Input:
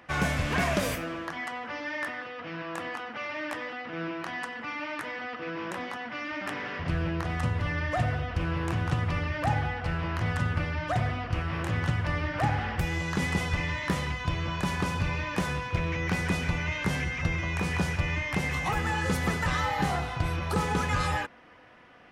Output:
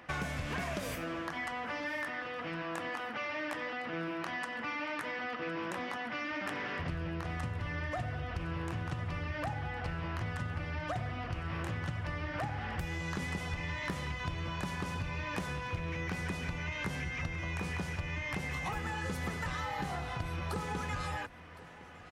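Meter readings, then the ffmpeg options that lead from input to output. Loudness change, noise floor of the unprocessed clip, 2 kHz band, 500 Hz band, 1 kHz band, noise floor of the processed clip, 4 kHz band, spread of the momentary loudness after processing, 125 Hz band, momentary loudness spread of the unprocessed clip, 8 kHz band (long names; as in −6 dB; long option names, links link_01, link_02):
−7.0 dB, −40 dBFS, −6.0 dB, −6.5 dB, −7.0 dB, −42 dBFS, −6.5 dB, 2 LU, −8.5 dB, 8 LU, −8.0 dB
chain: -af "acompressor=threshold=-34dB:ratio=6,aecho=1:1:1061|2122|3183:0.112|0.0494|0.0217"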